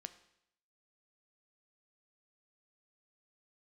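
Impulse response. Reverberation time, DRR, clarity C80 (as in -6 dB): 0.75 s, 10.0 dB, 16.5 dB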